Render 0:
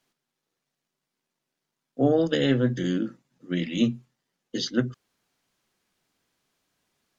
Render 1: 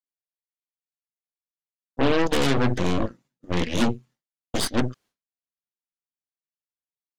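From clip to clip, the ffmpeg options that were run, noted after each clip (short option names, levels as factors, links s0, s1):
-af "asoftclip=type=tanh:threshold=0.237,agate=range=0.0224:threshold=0.00282:ratio=3:detection=peak,aeval=exprs='0.211*(cos(1*acos(clip(val(0)/0.211,-1,1)))-cos(1*PI/2))+0.0668*(cos(8*acos(clip(val(0)/0.211,-1,1)))-cos(8*PI/2))':c=same"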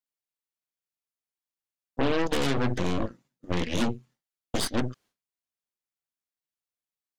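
-af "acompressor=threshold=0.0708:ratio=2.5"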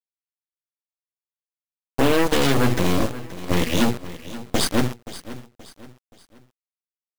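-af "acrusher=bits=5:mix=0:aa=0.000001,aecho=1:1:526|1052|1578:0.168|0.0655|0.0255,volume=2.24"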